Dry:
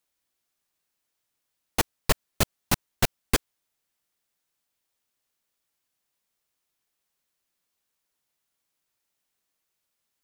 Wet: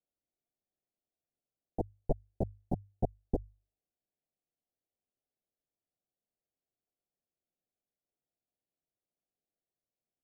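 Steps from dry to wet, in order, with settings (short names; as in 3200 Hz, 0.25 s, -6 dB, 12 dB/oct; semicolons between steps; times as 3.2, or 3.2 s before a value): elliptic low-pass 740 Hz, stop band 40 dB; notches 50/100 Hz; gain -5 dB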